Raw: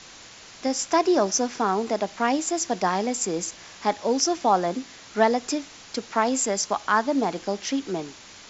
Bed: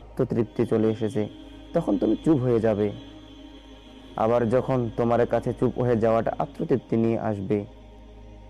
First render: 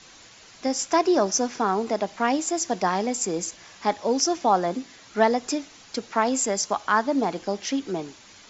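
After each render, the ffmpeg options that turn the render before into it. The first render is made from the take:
-af "afftdn=nr=6:nf=-46"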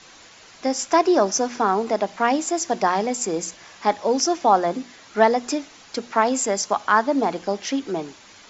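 -af "equalizer=f=940:w=0.33:g=4,bandreject=f=60:t=h:w=6,bandreject=f=120:t=h:w=6,bandreject=f=180:t=h:w=6,bandreject=f=240:t=h:w=6"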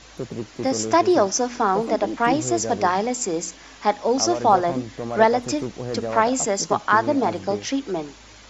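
-filter_complex "[1:a]volume=0.447[s0];[0:a][s0]amix=inputs=2:normalize=0"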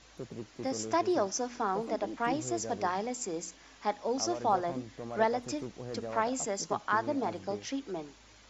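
-af "volume=0.266"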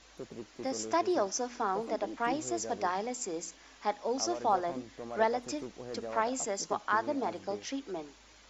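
-af "equalizer=f=120:w=1.1:g=-8.5"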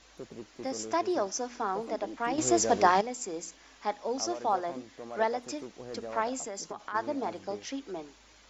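-filter_complex "[0:a]asettb=1/sr,asplit=3[s0][s1][s2];[s0]atrim=end=4.334[s3];[s1]atrim=start=4.33:end=5.79,asetpts=PTS-STARTPTS,afade=t=in:d=0.004:c=qsin,afade=t=out:st=1.456:d=0.004:c=qsin,lowshelf=f=110:g=-8.5[s4];[s2]atrim=start=5.786[s5];[s3][s4]acrossfade=d=0.004:c1=hsin:c2=qsin[s6];[s6][s5]acrossfade=d=0.004:c1=qsin:c2=hsin,asplit=3[s7][s8][s9];[s7]afade=t=out:st=6.38:d=0.02[s10];[s8]acompressor=threshold=0.02:ratio=6:attack=3.2:release=140:knee=1:detection=peak,afade=t=in:st=6.38:d=0.02,afade=t=out:st=6.94:d=0.02[s11];[s9]afade=t=in:st=6.94:d=0.02[s12];[s10][s11][s12]amix=inputs=3:normalize=0,asplit=3[s13][s14][s15];[s13]atrim=end=2.382[s16];[s14]atrim=start=2.378:end=3.012,asetpts=PTS-STARTPTS,volume=2.99[s17];[s15]atrim=start=3.008[s18];[s16][s17]acrossfade=d=0.004:c1=hsin:c2=hsin[s19];[s19][s18]acrossfade=d=0.004:c1=hsin:c2=hsin"

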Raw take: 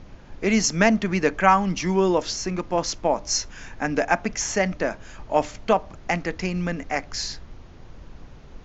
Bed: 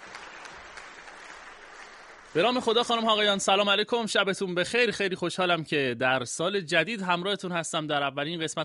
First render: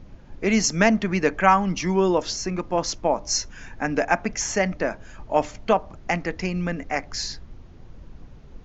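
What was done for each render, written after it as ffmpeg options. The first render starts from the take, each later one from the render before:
-af "afftdn=nr=6:nf=-45"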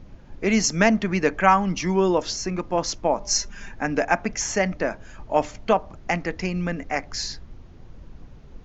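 -filter_complex "[0:a]asettb=1/sr,asplit=3[s0][s1][s2];[s0]atrim=end=3.204[s3];[s1]atrim=start=3.2:end=3.72,asetpts=PTS-STARTPTS,afade=t=in:d=0.004:c=qsin,afade=t=out:st=0.516:d=0.004:c=qsin,aecho=1:1:5:0.63,atrim=end_sample=22932[s4];[s2]atrim=start=3.716[s5];[s3][s4]acrossfade=d=0.004:c1=hsin:c2=qsin[s6];[s6][s5]acrossfade=d=0.004:c1=qsin:c2=hsin"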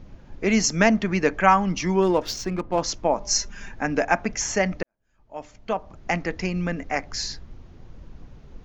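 -filter_complex "[0:a]asettb=1/sr,asplit=3[s0][s1][s2];[s0]atrim=end=2.024[s3];[s1]atrim=start=2.02:end=2.81,asetpts=PTS-STARTPTS,afade=t=in:d=0.004:c=qsin,afade=t=out:st=0.786:d=0.004:c=qsin,adynamicsmooth=sensitivity=6.5:basefreq=1800[s4];[s2]atrim=start=2.806[s5];[s3][s4]acrossfade=d=0.004:c1=hsin:c2=qsin[s6];[s6][s5]acrossfade=d=0.004:c1=qsin:c2=hsin,asplit=2[s7][s8];[s7]atrim=end=4.83,asetpts=PTS-STARTPTS,afade=t=out:st=4.826:d=0.004:c=hsin[s9];[s8]atrim=start=4.83,asetpts=PTS-STARTPTS,afade=t=in:d=1.32:c=qua[s10];[s9][s10]concat=n=2:v=0:a=1"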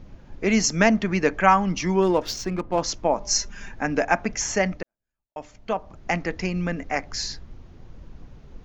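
-filter_complex "[0:a]asplit=2[s0][s1];[s0]atrim=end=5.36,asetpts=PTS-STARTPTS,afade=t=out:st=4.67:d=0.69:c=qua[s2];[s1]atrim=start=5.36,asetpts=PTS-STARTPTS,afade=t=in:d=0.004:c=hsin[s3];[s2][s3]concat=n=2:v=0:a=1"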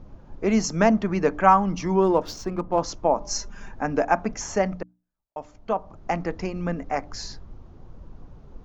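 -af "highshelf=f=1500:t=q:w=1.5:g=-6.5,bandreject=f=60:t=h:w=6,bandreject=f=120:t=h:w=6,bandreject=f=180:t=h:w=6,bandreject=f=240:t=h:w=6,bandreject=f=300:t=h:w=6"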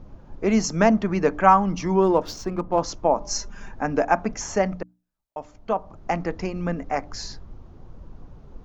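-af "volume=1.12"

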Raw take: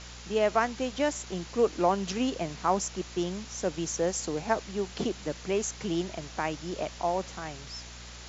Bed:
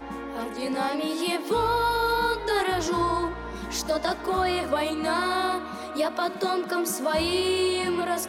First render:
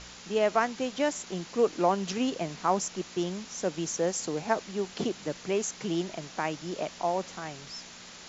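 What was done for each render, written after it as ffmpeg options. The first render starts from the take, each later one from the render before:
-af "bandreject=f=60:t=h:w=4,bandreject=f=120:t=h:w=4"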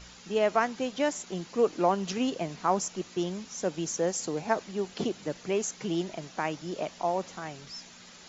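-af "afftdn=nr=7:nf=-48"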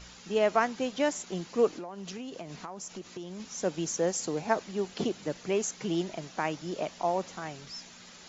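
-filter_complex "[0:a]asettb=1/sr,asplit=3[s0][s1][s2];[s0]atrim=end=1.714[s3];[s1]atrim=start=1.71:end=3.4,asetpts=PTS-STARTPTS,afade=t=in:d=0.004:c=qsin,afade=t=out:st=1.686:d=0.004:c=qsin,acompressor=threshold=0.0158:ratio=12:attack=3.2:release=140:knee=1:detection=peak[s4];[s2]atrim=start=3.396[s5];[s3][s4]acrossfade=d=0.004:c1=hsin:c2=qsin[s6];[s6][s5]acrossfade=d=0.004:c1=qsin:c2=hsin"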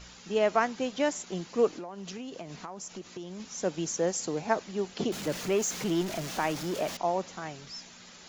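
-filter_complex "[0:a]asettb=1/sr,asplit=3[s0][s1][s2];[s0]atrim=end=5.124[s3];[s1]atrim=start=5.12:end=6.97,asetpts=PTS-STARTPTS,afade=t=in:d=0.004:c=qsin,afade=t=out:st=1.846:d=0.004:c=qsin,aeval=exprs='val(0)+0.5*0.0188*sgn(val(0))':c=same[s4];[s2]atrim=start=6.966[s5];[s3][s4]acrossfade=d=0.004:c1=hsin:c2=qsin[s6];[s6][s5]acrossfade=d=0.004:c1=qsin:c2=hsin"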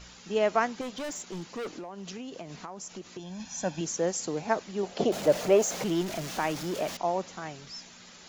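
-filter_complex "[0:a]asettb=1/sr,asplit=3[s0][s1][s2];[s0]atrim=end=0.814[s3];[s1]atrim=start=0.81:end=1.9,asetpts=PTS-STARTPTS,afade=t=in:d=0.004:c=qsin,afade=t=out:st=1.086:d=0.004:c=qsin,volume=44.7,asoftclip=hard,volume=0.0224[s4];[s2]atrim=start=1.896[s5];[s3][s4]acrossfade=d=0.004:c1=hsin:c2=qsin[s6];[s6][s5]acrossfade=d=0.004:c1=qsin:c2=hsin,asettb=1/sr,asplit=3[s7][s8][s9];[s7]atrim=end=3.194[s10];[s8]atrim=start=3.19:end=3.81,asetpts=PTS-STARTPTS,afade=t=in:d=0.004:c=qsin,afade=t=out:st=0.616:d=0.004:c=qsin,aecho=1:1:1.2:0.76,atrim=end_sample=27342[s11];[s9]atrim=start=3.806[s12];[s10][s11]acrossfade=d=0.004:c1=hsin:c2=qsin[s13];[s13][s12]acrossfade=d=0.004:c1=qsin:c2=hsin,asettb=1/sr,asplit=3[s14][s15][s16];[s14]atrim=end=4.834[s17];[s15]atrim=start=4.83:end=5.84,asetpts=PTS-STARTPTS,afade=t=in:d=0.004:c=qsin,afade=t=out:st=1.006:d=0.004:c=qsin,equalizer=f=620:w=1.6:g=13.5[s18];[s16]atrim=start=5.836[s19];[s17][s18]acrossfade=d=0.004:c1=hsin:c2=qsin[s20];[s20][s19]acrossfade=d=0.004:c1=qsin:c2=hsin"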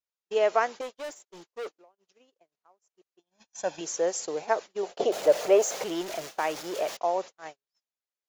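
-af "agate=range=0.00355:threshold=0.0158:ratio=16:detection=peak,lowshelf=f=310:t=q:w=1.5:g=-12"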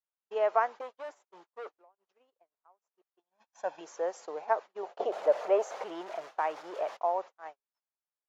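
-af "bandpass=f=950:t=q:w=1.3:csg=0"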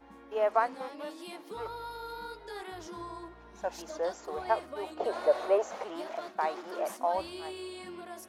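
-filter_complex "[1:a]volume=0.133[s0];[0:a][s0]amix=inputs=2:normalize=0"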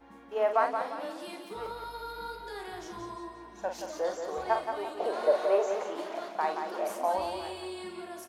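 -filter_complex "[0:a]asplit=2[s0][s1];[s1]adelay=44,volume=0.422[s2];[s0][s2]amix=inputs=2:normalize=0,aecho=1:1:175|350|525|700|875:0.447|0.183|0.0751|0.0308|0.0126"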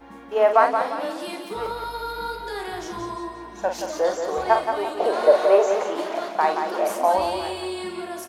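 -af "volume=2.99"

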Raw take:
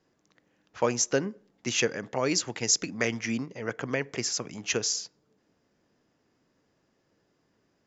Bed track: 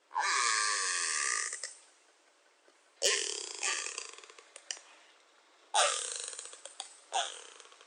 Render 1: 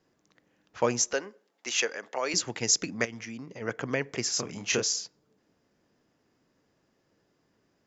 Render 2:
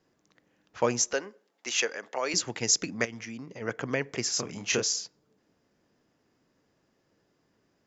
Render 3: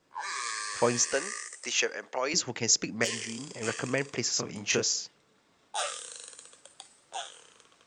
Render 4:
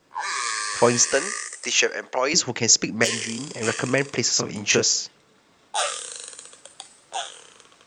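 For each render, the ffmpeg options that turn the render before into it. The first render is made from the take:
-filter_complex "[0:a]asettb=1/sr,asplit=3[s0][s1][s2];[s0]atrim=end=1.134[s3];[s1]atrim=start=1.13:end=2.34,asetpts=PTS-STARTPTS,afade=t=in:d=0.004:c=qsin,afade=t=out:st=1.206:d=0.004:c=qsin,highpass=540[s4];[s2]atrim=start=2.336[s5];[s3][s4]acrossfade=d=0.004:c1=hsin:c2=qsin[s6];[s6][s5]acrossfade=d=0.004:c1=qsin:c2=hsin,asplit=3[s7][s8][s9];[s7]afade=t=out:st=3.04:d=0.02[s10];[s8]acompressor=threshold=0.0141:ratio=5:attack=3.2:release=140:knee=1:detection=peak,afade=t=in:st=3.04:d=0.02,afade=t=out:st=3.6:d=0.02[s11];[s9]afade=t=in:st=3.6:d=0.02[s12];[s10][s11][s12]amix=inputs=3:normalize=0,asettb=1/sr,asplit=3[s13][s14][s15];[s13]atrim=end=4.304[s16];[s14]atrim=start=4.3:end=4.83,asetpts=PTS-STARTPTS,afade=t=in:d=0.004:c=qsin,afade=t=out:st=0.526:d=0.004:c=qsin,asplit=2[s17][s18];[s18]adelay=30,volume=0.668[s19];[s17][s19]amix=inputs=2:normalize=0,atrim=end_sample=23373[s20];[s15]atrim=start=4.826[s21];[s16][s20]acrossfade=d=0.004:c1=hsin:c2=qsin[s22];[s22][s21]acrossfade=d=0.004:c1=qsin:c2=hsin"
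-af anull
-filter_complex "[1:a]volume=0.562[s0];[0:a][s0]amix=inputs=2:normalize=0"
-af "volume=2.51,alimiter=limit=0.708:level=0:latency=1"

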